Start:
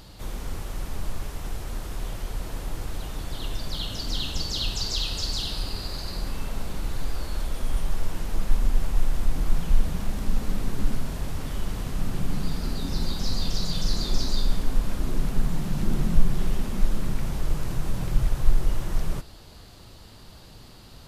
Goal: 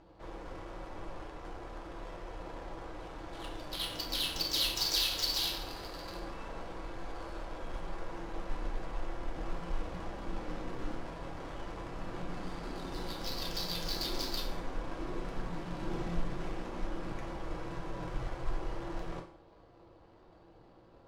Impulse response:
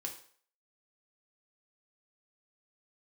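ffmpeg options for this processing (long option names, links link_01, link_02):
-filter_complex "[0:a]adynamicsmooth=sensitivity=8:basefreq=620,bass=frequency=250:gain=-14,treble=frequency=4000:gain=3[link_01];[1:a]atrim=start_sample=2205[link_02];[link_01][link_02]afir=irnorm=-1:irlink=0"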